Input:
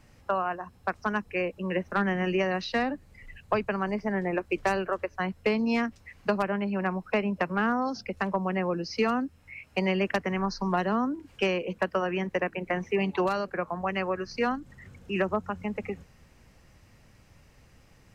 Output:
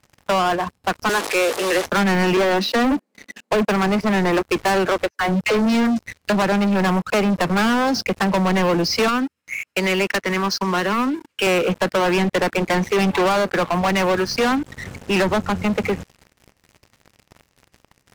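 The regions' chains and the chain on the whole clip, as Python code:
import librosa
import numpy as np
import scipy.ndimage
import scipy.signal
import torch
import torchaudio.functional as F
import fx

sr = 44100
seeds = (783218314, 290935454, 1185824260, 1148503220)

y = fx.chain(x, sr, fx.delta_mod(bps=64000, step_db=-33.0),
    fx.highpass(hz=340.0, slope=24), at=(1.09, 1.86))
y = fx.chain(y, sr, fx.steep_highpass(hz=200.0, slope=96),
    fx.tilt_shelf(db=5.5, hz=770.0), at=(2.37, 3.68))
y = fx.chain(y, sr, fx.peak_eq(hz=1500.0, db=-5.0, octaves=2.5),
    fx.dispersion(late='lows', ms=96.0, hz=470.0), at=(5.1, 6.3))
y = fx.chain(y, sr, fx.highpass(hz=480.0, slope=6),
    fx.peak_eq(hz=740.0, db=-9.0, octaves=0.66),
    fx.tremolo(hz=13.0, depth=0.33), at=(9.08, 11.47))
y = fx.highpass(y, sr, hz=80.0, slope=6)
y = fx.leveller(y, sr, passes=5)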